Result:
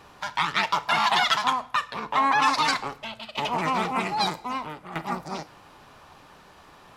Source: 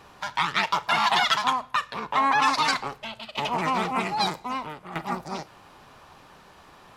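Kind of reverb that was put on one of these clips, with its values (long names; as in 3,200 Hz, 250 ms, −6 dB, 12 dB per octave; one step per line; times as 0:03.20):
feedback delay network reverb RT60 0.64 s, high-frequency decay 0.85×, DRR 16.5 dB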